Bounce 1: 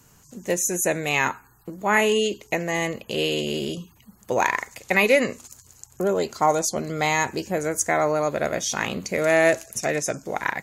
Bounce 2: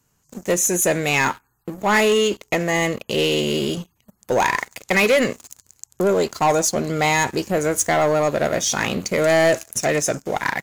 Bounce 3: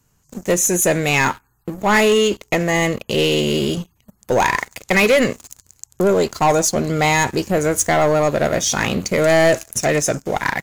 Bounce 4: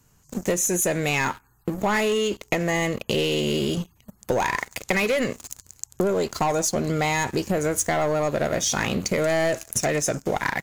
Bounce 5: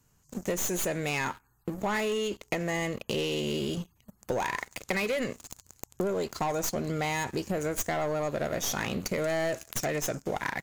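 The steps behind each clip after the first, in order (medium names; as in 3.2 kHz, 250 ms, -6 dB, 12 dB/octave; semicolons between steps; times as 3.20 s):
waveshaping leveller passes 3; trim -5.5 dB
bass shelf 110 Hz +8 dB; trim +2 dB
compression 6:1, threshold -23 dBFS, peak gain reduction 11.5 dB; trim +2 dB
tracing distortion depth 0.074 ms; trim -7 dB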